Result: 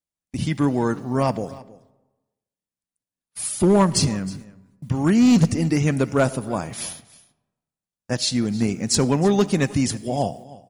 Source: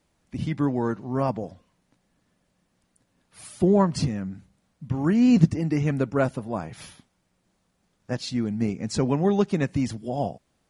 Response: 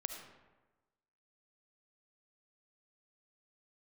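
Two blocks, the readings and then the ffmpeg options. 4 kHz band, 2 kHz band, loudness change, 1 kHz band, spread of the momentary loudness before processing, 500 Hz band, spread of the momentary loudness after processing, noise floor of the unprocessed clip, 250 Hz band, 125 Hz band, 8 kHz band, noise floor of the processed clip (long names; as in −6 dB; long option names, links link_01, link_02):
+11.0 dB, +6.0 dB, +3.5 dB, +4.5 dB, 14 LU, +3.5 dB, 14 LU, −72 dBFS, +3.0 dB, +3.0 dB, +15.0 dB, below −85 dBFS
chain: -filter_complex "[0:a]aemphasis=mode=production:type=75kf,agate=range=-32dB:threshold=-43dB:ratio=16:detection=peak,volume=14.5dB,asoftclip=hard,volume=-14.5dB,aecho=1:1:315:0.1,asplit=2[link_01][link_02];[1:a]atrim=start_sample=2205[link_03];[link_02][link_03]afir=irnorm=-1:irlink=0,volume=-11dB[link_04];[link_01][link_04]amix=inputs=2:normalize=0,volume=2dB"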